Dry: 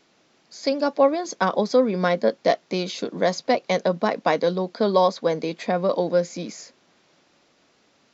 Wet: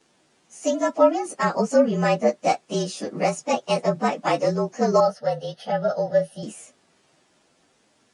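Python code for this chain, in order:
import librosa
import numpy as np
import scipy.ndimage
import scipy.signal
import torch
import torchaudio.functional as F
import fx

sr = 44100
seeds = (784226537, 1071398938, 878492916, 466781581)

y = fx.partial_stretch(x, sr, pct=111)
y = fx.fixed_phaser(y, sr, hz=1600.0, stages=8, at=(5.0, 6.43))
y = F.gain(torch.from_numpy(y), 2.5).numpy()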